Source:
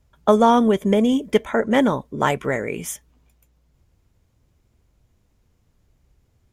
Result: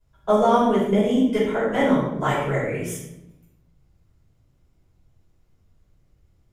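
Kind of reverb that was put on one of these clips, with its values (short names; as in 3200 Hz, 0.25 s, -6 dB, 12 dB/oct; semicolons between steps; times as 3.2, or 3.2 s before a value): shoebox room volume 260 m³, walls mixed, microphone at 5.2 m; gain -15.5 dB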